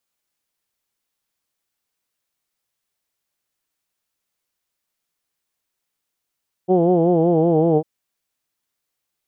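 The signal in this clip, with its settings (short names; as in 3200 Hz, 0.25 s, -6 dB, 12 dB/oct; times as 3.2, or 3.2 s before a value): formant vowel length 1.15 s, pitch 178 Hz, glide -2 st, F1 420 Hz, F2 760 Hz, F3 3100 Hz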